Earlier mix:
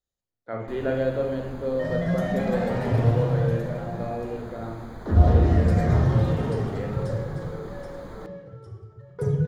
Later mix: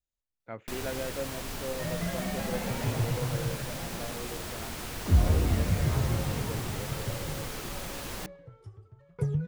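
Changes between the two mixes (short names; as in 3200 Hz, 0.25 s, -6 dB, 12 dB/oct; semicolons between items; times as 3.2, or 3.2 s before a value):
first sound: remove running mean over 16 samples; reverb: off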